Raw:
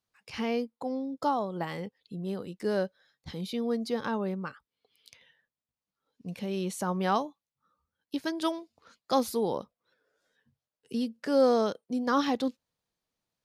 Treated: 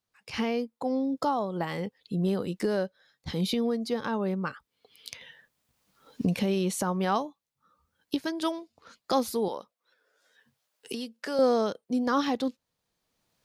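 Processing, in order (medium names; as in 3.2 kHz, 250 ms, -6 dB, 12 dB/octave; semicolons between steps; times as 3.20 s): recorder AGC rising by 13 dB/s; 9.48–11.39 s: high-pass 750 Hz 6 dB/octave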